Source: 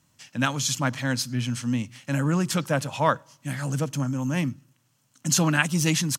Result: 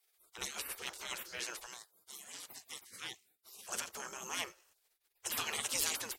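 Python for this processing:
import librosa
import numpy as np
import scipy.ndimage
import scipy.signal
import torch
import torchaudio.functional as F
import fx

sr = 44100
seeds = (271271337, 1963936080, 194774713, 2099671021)

y = fx.highpass(x, sr, hz=1200.0, slope=6, at=(1.66, 3.69))
y = fx.spec_gate(y, sr, threshold_db=-25, keep='weak')
y = y * librosa.db_to_amplitude(1.5)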